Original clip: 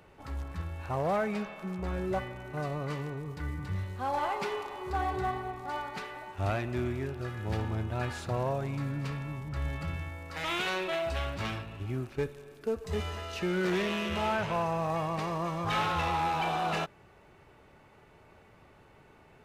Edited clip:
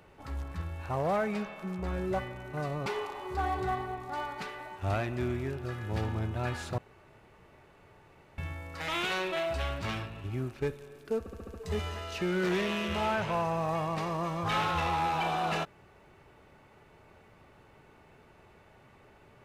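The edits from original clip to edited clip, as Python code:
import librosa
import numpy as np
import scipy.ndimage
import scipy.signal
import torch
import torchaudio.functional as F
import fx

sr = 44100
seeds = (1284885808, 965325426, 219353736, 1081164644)

y = fx.edit(x, sr, fx.cut(start_s=2.86, length_s=1.56),
    fx.room_tone_fill(start_s=8.34, length_s=1.6),
    fx.stutter(start_s=12.75, slice_s=0.07, count=6), tone=tone)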